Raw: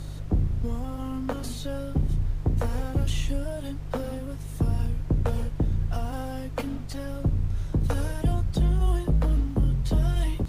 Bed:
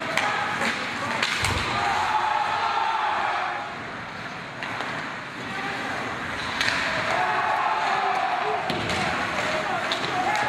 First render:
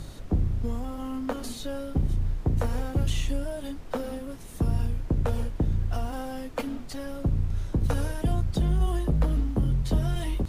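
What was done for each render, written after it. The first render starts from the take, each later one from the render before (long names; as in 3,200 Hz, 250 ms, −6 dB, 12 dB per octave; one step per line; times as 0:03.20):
hum removal 50 Hz, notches 3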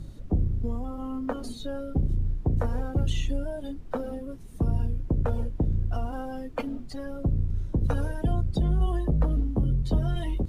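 broadband denoise 12 dB, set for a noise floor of −40 dBFS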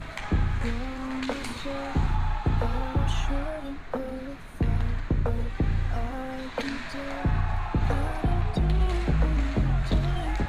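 mix in bed −13.5 dB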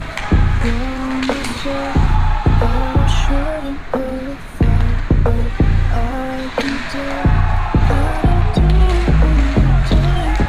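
level +12 dB
brickwall limiter −3 dBFS, peak gain reduction 2 dB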